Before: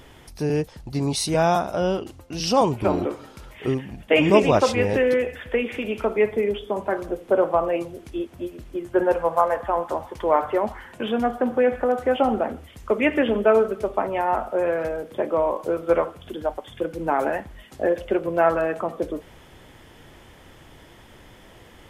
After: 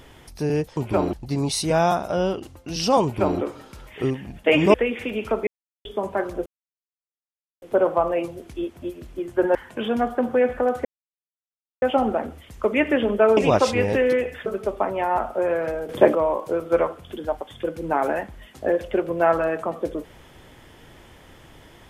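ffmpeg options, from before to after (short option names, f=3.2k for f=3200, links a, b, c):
-filter_complex "[0:a]asplit=13[a][b][c][d][e][f][g][h][i][j][k][l][m];[a]atrim=end=0.772[n];[b]atrim=start=2.678:end=3.042[o];[c]atrim=start=0.768:end=4.382[p];[d]atrim=start=5.468:end=6.2,asetpts=PTS-STARTPTS,afade=t=out:st=0.728:d=0.004:c=hsin[q];[e]atrim=start=6.2:end=6.58,asetpts=PTS-STARTPTS,volume=0[r];[f]atrim=start=6.58:end=7.19,asetpts=PTS-STARTPTS,afade=t=in:d=0.004:c=hsin,afade=t=out:st=0.606:d=0.004:c=hsin,apad=pad_dur=1.16[s];[g]atrim=start=7.19:end=9.122,asetpts=PTS-STARTPTS,afade=t=in:d=0.004:c=hsin[t];[h]atrim=start=10.778:end=12.08,asetpts=PTS-STARTPTS,afade=t=out:st=1.298:d=0.004:c=hsin,apad=pad_dur=0.97[u];[i]atrim=start=12.08:end=13.632,asetpts=PTS-STARTPTS,afade=t=in:d=0.004:c=hsin[v];[j]atrim=start=4.378:end=5.472[w];[k]atrim=start=13.628:end=15.062[x];[l]atrim=start=15.058:end=15.322,asetpts=PTS-STARTPTS,volume=10.5dB[y];[m]atrim=start=15.318[z];[n][o]acrossfade=d=0.004:c1=hsin:c2=hsin[aa];[aa][p]acrossfade=d=0.004:c1=hsin:c2=hsin[ab];[q][r][s][t]concat=n=4:v=0:a=1[ac];[ab][ac]acrossfade=d=0.004:c1=hsin:c2=hsin[ad];[u][v]concat=n=2:v=0:a=1[ae];[ad][ae]acrossfade=d=0.004:c1=hsin:c2=hsin[af];[af][w]acrossfade=d=0.004:c1=hsin:c2=hsin[ag];[ag][x]acrossfade=d=0.004:c1=hsin:c2=hsin[ah];[ah][y]acrossfade=d=0.004:c1=hsin:c2=hsin[ai];[ai][z]acrossfade=d=0.004:c1=hsin:c2=hsin"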